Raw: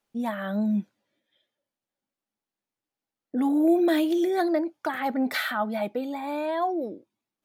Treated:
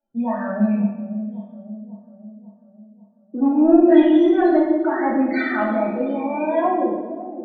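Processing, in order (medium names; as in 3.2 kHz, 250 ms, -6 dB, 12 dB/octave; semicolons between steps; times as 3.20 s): rattle on loud lows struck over -30 dBFS, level -32 dBFS; 0.74–3.87 s: low-pass 1.6 kHz 6 dB/octave; loudest bins only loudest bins 16; two-band feedback delay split 720 Hz, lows 545 ms, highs 115 ms, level -11.5 dB; Chebyshev shaper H 3 -26 dB, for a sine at -13 dBFS; reverberation RT60 0.95 s, pre-delay 3 ms, DRR -6.5 dB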